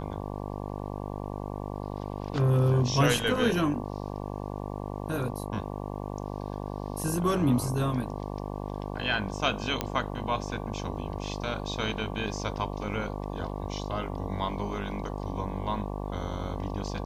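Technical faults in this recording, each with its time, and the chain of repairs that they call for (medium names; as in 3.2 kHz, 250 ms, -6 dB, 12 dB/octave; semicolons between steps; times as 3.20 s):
buzz 50 Hz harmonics 23 -35 dBFS
9.81 s: pop -12 dBFS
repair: de-click; de-hum 50 Hz, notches 23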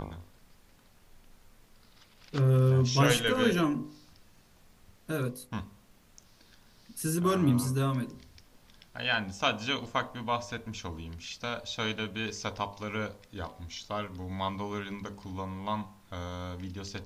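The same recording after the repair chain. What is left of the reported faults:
nothing left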